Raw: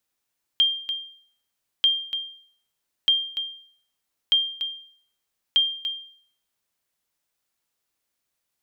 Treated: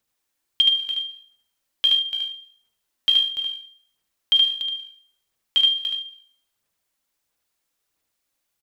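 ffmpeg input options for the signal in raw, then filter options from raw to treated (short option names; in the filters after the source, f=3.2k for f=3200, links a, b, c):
-f lavfi -i "aevalsrc='0.251*(sin(2*PI*3190*mod(t,1.24))*exp(-6.91*mod(t,1.24)/0.56)+0.316*sin(2*PI*3190*max(mod(t,1.24)-0.29,0))*exp(-6.91*max(mod(t,1.24)-0.29,0)/0.56))':d=6.2:s=44100"
-filter_complex "[0:a]aphaser=in_gain=1:out_gain=1:delay=3.8:decay=0.44:speed=1.5:type=sinusoidal,asplit=2[a][b];[b]aecho=0:1:74:0.668[c];[a][c]amix=inputs=2:normalize=0"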